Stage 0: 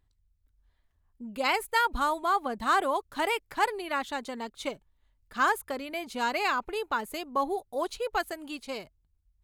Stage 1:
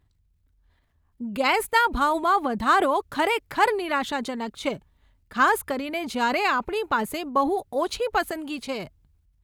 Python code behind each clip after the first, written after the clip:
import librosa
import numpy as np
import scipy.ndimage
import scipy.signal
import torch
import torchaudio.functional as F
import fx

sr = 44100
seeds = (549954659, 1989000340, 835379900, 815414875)

y = fx.highpass(x, sr, hz=120.0, slope=6)
y = fx.bass_treble(y, sr, bass_db=7, treble_db=-4)
y = fx.transient(y, sr, attack_db=2, sustain_db=7)
y = y * librosa.db_to_amplitude(4.5)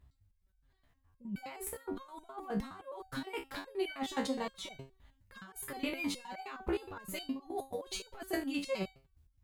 y = fx.low_shelf(x, sr, hz=110.0, db=6.0)
y = fx.over_compress(y, sr, threshold_db=-28.0, ratio=-0.5)
y = fx.resonator_held(y, sr, hz=9.6, low_hz=67.0, high_hz=760.0)
y = y * librosa.db_to_amplitude(1.5)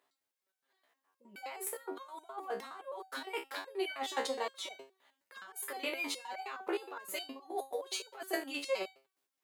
y = scipy.signal.sosfilt(scipy.signal.butter(4, 390.0, 'highpass', fs=sr, output='sos'), x)
y = y * librosa.db_to_amplitude(2.5)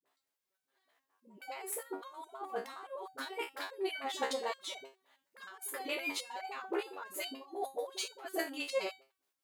y = fx.dispersion(x, sr, late='highs', ms=59.0, hz=350.0)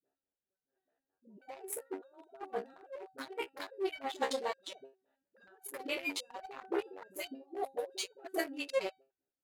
y = fx.wiener(x, sr, points=41)
y = y * librosa.db_to_amplitude(2.0)